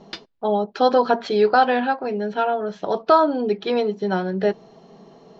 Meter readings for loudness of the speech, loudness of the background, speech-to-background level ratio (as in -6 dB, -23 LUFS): -20.5 LUFS, -38.5 LUFS, 18.0 dB